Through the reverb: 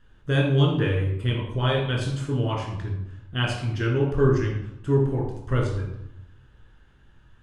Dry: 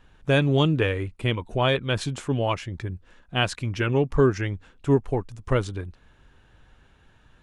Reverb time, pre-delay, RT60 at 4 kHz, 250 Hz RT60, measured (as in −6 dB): 0.85 s, 15 ms, 0.55 s, 1.1 s